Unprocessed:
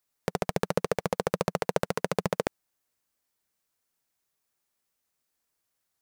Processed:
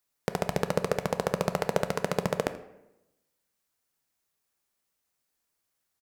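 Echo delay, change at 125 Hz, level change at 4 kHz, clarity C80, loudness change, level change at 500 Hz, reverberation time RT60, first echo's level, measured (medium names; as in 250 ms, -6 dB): 82 ms, +1.0 dB, 0.0 dB, 14.5 dB, +0.5 dB, 0.0 dB, 0.90 s, -19.0 dB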